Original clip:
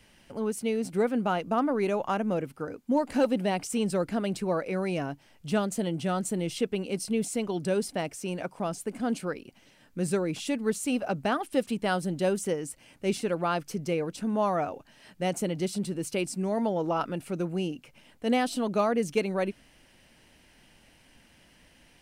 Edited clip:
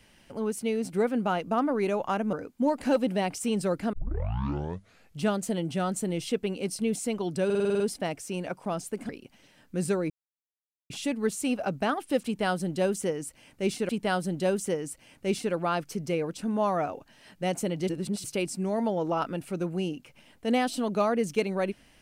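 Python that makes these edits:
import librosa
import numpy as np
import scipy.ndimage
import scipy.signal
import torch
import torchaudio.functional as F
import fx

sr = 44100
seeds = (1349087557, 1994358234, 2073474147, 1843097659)

y = fx.edit(x, sr, fx.cut(start_s=2.33, length_s=0.29),
    fx.tape_start(start_s=4.22, length_s=1.27),
    fx.stutter(start_s=7.74, slice_s=0.05, count=8),
    fx.cut(start_s=9.03, length_s=0.29),
    fx.insert_silence(at_s=10.33, length_s=0.8),
    fx.repeat(start_s=11.68, length_s=1.64, count=2),
    fx.reverse_span(start_s=15.68, length_s=0.35), tone=tone)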